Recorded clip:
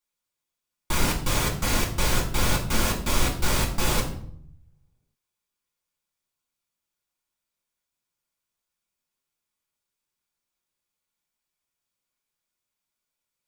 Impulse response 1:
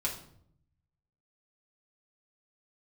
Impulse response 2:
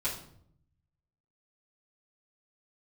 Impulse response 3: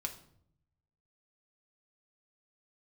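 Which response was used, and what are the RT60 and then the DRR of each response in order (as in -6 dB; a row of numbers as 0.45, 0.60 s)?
1; 0.65, 0.65, 0.65 s; -4.0, -10.5, 2.5 dB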